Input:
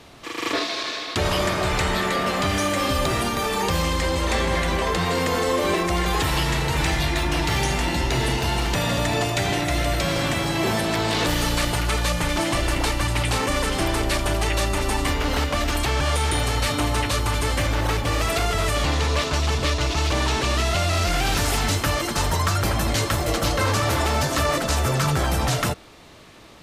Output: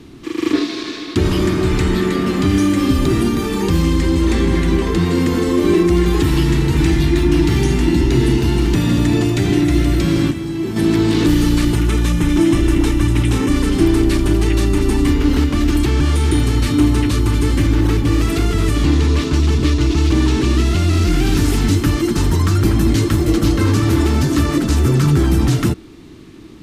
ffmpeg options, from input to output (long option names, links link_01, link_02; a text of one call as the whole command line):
ffmpeg -i in.wav -filter_complex "[0:a]asettb=1/sr,asplit=3[link_01][link_02][link_03];[link_01]atrim=end=11.754[link_04];[link_02]atrim=start=11.75:end=13.5,asetpts=PTS-STARTPTS,afade=type=in:duration=0.004:curve=qsin,afade=type=out:start_time=1.746:duration=0.004:curve=qsin,bandreject=frequency=4500:width=7[link_05];[link_03]atrim=start=13.496[link_06];[link_04][link_05]acrossfade=duration=0.004:curve1=hsin:curve2=qsin[link_07];[link_07][link_06]acrossfade=duration=0.004:curve1=qsin:curve2=hsin,asplit=3[link_08][link_09][link_10];[link_08]atrim=end=10.31,asetpts=PTS-STARTPTS,afade=type=out:start_time=10.15:duration=0.16:curve=log:silence=0.354813[link_11];[link_09]atrim=start=10.31:end=10.76,asetpts=PTS-STARTPTS,volume=-9dB[link_12];[link_10]atrim=start=10.76,asetpts=PTS-STARTPTS,afade=type=in:duration=0.16:curve=log:silence=0.354813[link_13];[link_11][link_12][link_13]concat=n=3:v=0:a=1,lowshelf=frequency=440:width_type=q:width=3:gain=9.5,volume=-1dB" out.wav